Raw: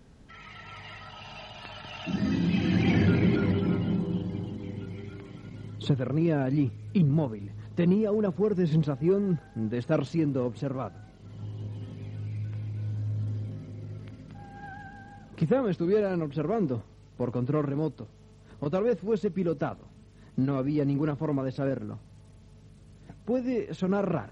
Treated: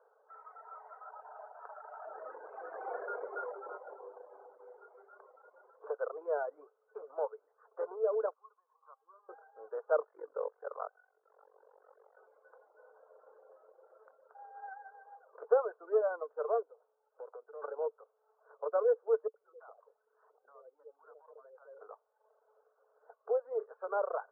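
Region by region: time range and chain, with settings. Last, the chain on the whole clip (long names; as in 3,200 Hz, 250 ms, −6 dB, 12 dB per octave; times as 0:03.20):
0:08.33–0:09.29: downward compressor 10 to 1, threshold −26 dBFS + resonant band-pass 1,100 Hz, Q 9.5
0:10.04–0:12.18: high shelf with overshoot 2,700 Hz −10.5 dB, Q 3 + amplitude modulation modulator 46 Hz, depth 100%
0:16.62–0:17.62: parametric band 1,100 Hz −6 dB 0.26 octaves + downward compressor 16 to 1, threshold −35 dBFS + slack as between gear wheels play −59 dBFS
0:19.27–0:21.79: downward compressor 12 to 1, threshold −41 dBFS + multiband delay without the direct sound highs, lows 70 ms, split 660 Hz
whole clip: reverb reduction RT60 0.83 s; Chebyshev band-pass filter 440–1,500 Hz, order 5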